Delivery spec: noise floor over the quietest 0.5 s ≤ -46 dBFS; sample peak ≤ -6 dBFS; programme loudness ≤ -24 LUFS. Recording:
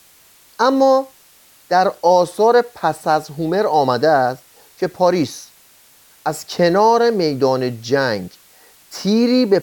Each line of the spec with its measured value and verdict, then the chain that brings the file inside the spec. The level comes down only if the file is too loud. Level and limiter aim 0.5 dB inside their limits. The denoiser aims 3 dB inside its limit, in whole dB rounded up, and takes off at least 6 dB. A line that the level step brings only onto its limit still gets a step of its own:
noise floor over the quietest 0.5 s -50 dBFS: OK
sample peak -2.5 dBFS: fail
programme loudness -16.5 LUFS: fail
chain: gain -8 dB

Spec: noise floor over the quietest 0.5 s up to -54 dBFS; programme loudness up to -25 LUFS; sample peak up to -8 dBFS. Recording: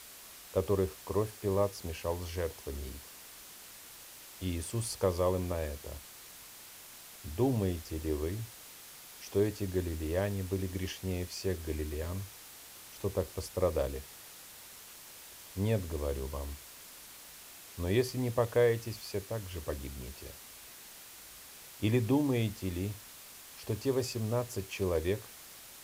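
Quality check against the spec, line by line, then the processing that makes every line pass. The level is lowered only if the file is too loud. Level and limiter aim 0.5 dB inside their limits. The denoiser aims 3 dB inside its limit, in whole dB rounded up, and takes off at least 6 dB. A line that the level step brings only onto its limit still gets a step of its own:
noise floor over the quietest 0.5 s -51 dBFS: fail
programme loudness -34.5 LUFS: OK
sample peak -14.5 dBFS: OK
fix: denoiser 6 dB, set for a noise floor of -51 dBFS

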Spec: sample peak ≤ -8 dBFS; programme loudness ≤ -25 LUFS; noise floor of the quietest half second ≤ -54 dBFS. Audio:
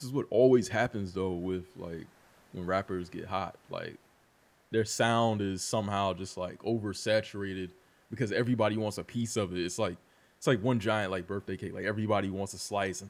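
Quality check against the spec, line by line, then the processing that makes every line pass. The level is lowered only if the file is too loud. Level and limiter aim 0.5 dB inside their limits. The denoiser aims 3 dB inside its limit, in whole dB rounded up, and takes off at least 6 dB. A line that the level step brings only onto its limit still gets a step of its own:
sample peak -12.0 dBFS: OK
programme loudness -31.5 LUFS: OK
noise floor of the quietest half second -66 dBFS: OK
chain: none

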